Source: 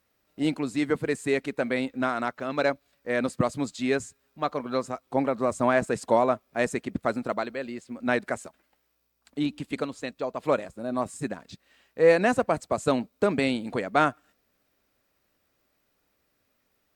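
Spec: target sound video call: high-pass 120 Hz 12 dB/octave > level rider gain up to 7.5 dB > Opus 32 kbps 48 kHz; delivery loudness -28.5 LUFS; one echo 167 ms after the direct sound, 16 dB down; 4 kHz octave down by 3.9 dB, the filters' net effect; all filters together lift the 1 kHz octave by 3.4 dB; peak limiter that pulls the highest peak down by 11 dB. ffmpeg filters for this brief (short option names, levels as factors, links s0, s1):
-af "equalizer=f=1000:t=o:g=5,equalizer=f=4000:t=o:g=-5,alimiter=limit=0.158:level=0:latency=1,highpass=120,aecho=1:1:167:0.158,dynaudnorm=m=2.37" -ar 48000 -c:a libopus -b:a 32k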